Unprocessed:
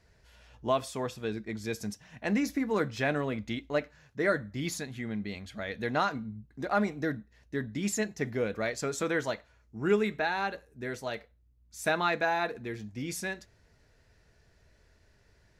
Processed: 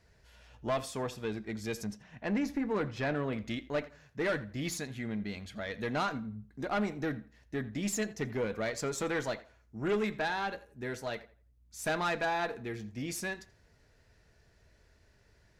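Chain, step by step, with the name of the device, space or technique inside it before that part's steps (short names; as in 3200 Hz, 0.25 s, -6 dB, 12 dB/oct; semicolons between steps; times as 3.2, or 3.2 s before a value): rockabilly slapback (tube stage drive 25 dB, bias 0.3; tape echo 84 ms, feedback 28%, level -16.5 dB, low-pass 3500 Hz); 1.84–3.33 high shelf 4900 Hz -11.5 dB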